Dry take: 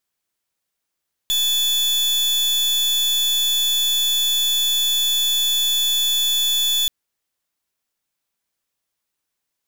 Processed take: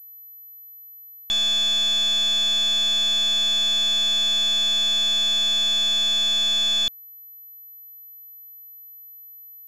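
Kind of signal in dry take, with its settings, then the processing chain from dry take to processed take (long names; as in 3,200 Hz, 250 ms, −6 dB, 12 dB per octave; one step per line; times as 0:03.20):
pulse wave 3,460 Hz, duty 39% −19 dBFS 5.58 s
switching amplifier with a slow clock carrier 12,000 Hz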